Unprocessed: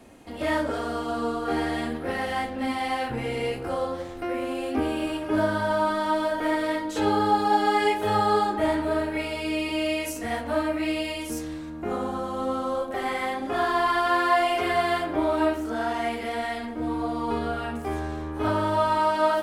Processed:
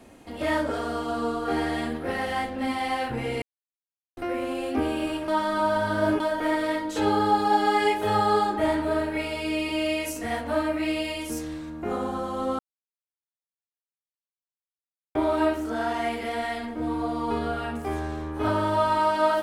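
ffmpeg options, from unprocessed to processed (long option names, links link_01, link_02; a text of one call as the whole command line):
ffmpeg -i in.wav -filter_complex "[0:a]asplit=7[link_01][link_02][link_03][link_04][link_05][link_06][link_07];[link_01]atrim=end=3.42,asetpts=PTS-STARTPTS,afade=type=out:start_time=3.416:duration=0.004:curve=hsin[link_08];[link_02]atrim=start=3.42:end=4.17,asetpts=PTS-STARTPTS,volume=0[link_09];[link_03]atrim=start=4.17:end=5.282,asetpts=PTS-STARTPTS,afade=type=in:duration=0.004:curve=hsin[link_10];[link_04]atrim=start=5.278:end=6.202,asetpts=PTS-STARTPTS,areverse[link_11];[link_05]atrim=start=6.198:end=12.59,asetpts=PTS-STARTPTS,afade=type=out:start_time=6.388:duration=0.004:curve=hsin[link_12];[link_06]atrim=start=12.59:end=15.15,asetpts=PTS-STARTPTS,volume=0[link_13];[link_07]atrim=start=15.15,asetpts=PTS-STARTPTS,afade=type=in:duration=0.004:curve=hsin[link_14];[link_08][link_09][link_10]concat=n=3:v=0:a=1[link_15];[link_15][link_11]acrossfade=duration=0.004:curve1=hsin:curve2=hsin[link_16];[link_12][link_13][link_14]concat=n=3:v=0:a=1[link_17];[link_16][link_17]acrossfade=duration=0.004:curve1=hsin:curve2=hsin" out.wav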